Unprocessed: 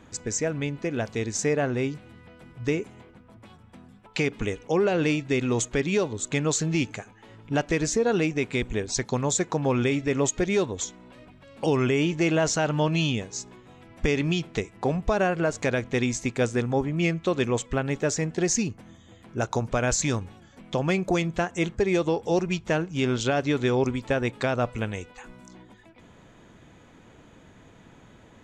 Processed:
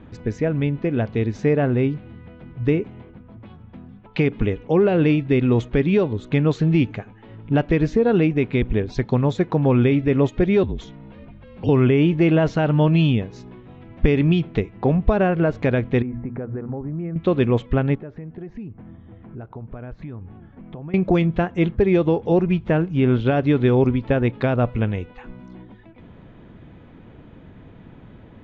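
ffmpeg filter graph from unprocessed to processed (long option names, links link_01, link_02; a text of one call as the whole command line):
ffmpeg -i in.wav -filter_complex "[0:a]asettb=1/sr,asplit=3[link_01][link_02][link_03];[link_01]atrim=end=10.634[link_04];[link_02]atrim=start=10.63:end=11.69,asetpts=PTS-STARTPTS,afade=type=in:duration=0.004:curve=qsin,afade=type=out:start_time=1.056:duration=0.004:curve=qsin,acrossover=split=320|3000[link_05][link_06][link_07];[link_06]acompressor=threshold=-44dB:ratio=3:attack=3.2:release=140:knee=2.83:detection=peak[link_08];[link_05][link_08][link_07]amix=inputs=3:normalize=0,afreqshift=-42[link_09];[link_03]atrim=start=11.686[link_10];[link_04][link_09]acrossfade=duration=0.004:curve1=hsin:curve2=qsin[link_11];[link_11][link_10]acrossfade=duration=0.004:curve1=qsin:curve2=hsin,asettb=1/sr,asplit=3[link_12][link_13][link_14];[link_12]atrim=end=16.024[link_15];[link_13]atrim=start=16.02:end=17.16,asetpts=PTS-STARTPTS,afade=type=in:duration=0.004:curve=qsin,afade=type=out:start_time=1.136:duration=0.004:curve=qsin,lowpass=frequency=1600:width=0.5412,lowpass=frequency=1600:width=1.3066,bandreject=frequency=60:width_type=h:width=6,bandreject=frequency=120:width_type=h:width=6,bandreject=frequency=180:width_type=h:width=6,bandreject=frequency=240:width_type=h:width=6,acompressor=threshold=-33dB:ratio=6:attack=3.2:release=140:knee=1:detection=peak[link_16];[link_14]atrim=start=17.156[link_17];[link_15][link_16]acrossfade=duration=0.004:curve1=hsin:curve2=qsin[link_18];[link_18][link_17]acrossfade=duration=0.004:curve1=qsin:curve2=hsin,asettb=1/sr,asplit=3[link_19][link_20][link_21];[link_19]atrim=end=17.954[link_22];[link_20]atrim=start=17.95:end=20.94,asetpts=PTS-STARTPTS,afade=type=in:duration=0.004:curve=qsin,afade=type=out:start_time=2.986:duration=0.004:curve=qsin,lowpass=1800,acompressor=threshold=-44dB:ratio=3:attack=3.2:release=140:knee=1:detection=peak,bandreject=frequency=540:width=12[link_23];[link_21]atrim=start=20.936[link_24];[link_22][link_23]acrossfade=duration=0.004:curve1=hsin:curve2=qsin[link_25];[link_25][link_24]acrossfade=duration=0.004:curve1=qsin:curve2=hsin,asettb=1/sr,asplit=3[link_26][link_27][link_28];[link_26]atrim=end=22.324[link_29];[link_27]atrim=start=22.32:end=23.27,asetpts=PTS-STARTPTS,afade=type=in:duration=0.004:curve=qsin,afade=type=out:start_time=0.946:duration=0.004:curve=qsin,highshelf=frequency=6400:gain=11.5,acrossover=split=2700[link_30][link_31];[link_31]acompressor=threshold=-44dB:ratio=4:attack=1:release=60[link_32];[link_30][link_32]amix=inputs=2:normalize=0[link_33];[link_28]atrim=start=23.266[link_34];[link_29][link_33]acrossfade=duration=0.004:curve1=hsin:curve2=qsin[link_35];[link_35][link_34]acrossfade=duration=0.004:curve1=qsin:curve2=hsin,lowpass=frequency=3600:width=0.5412,lowpass=frequency=3600:width=1.3066,lowshelf=frequency=450:gain=10.5" out.wav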